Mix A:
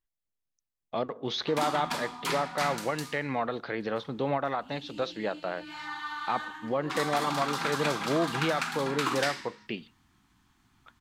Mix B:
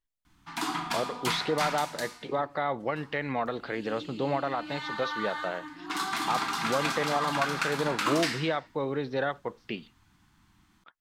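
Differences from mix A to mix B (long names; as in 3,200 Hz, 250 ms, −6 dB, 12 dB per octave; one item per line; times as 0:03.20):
background: entry −1.00 s
reverb: on, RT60 0.70 s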